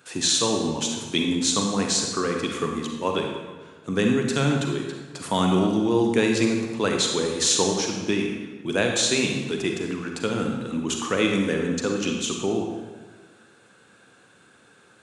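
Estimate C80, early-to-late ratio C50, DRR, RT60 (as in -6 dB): 5.0 dB, 2.5 dB, 2.0 dB, 1.4 s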